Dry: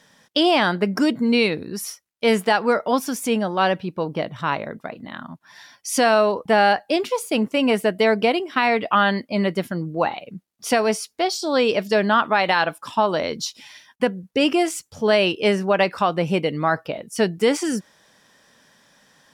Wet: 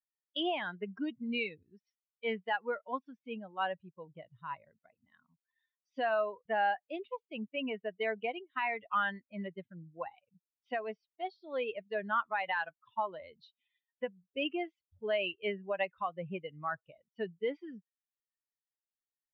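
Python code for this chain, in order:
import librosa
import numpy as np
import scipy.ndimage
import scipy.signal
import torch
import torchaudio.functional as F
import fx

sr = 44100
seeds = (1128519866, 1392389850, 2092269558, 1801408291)

y = fx.bin_expand(x, sr, power=2.0)
y = scipy.signal.sosfilt(scipy.signal.butter(8, 3300.0, 'lowpass', fs=sr, output='sos'), y)
y = fx.low_shelf(y, sr, hz=480.0, db=-8.5)
y = y * librosa.db_to_amplitude(-8.5)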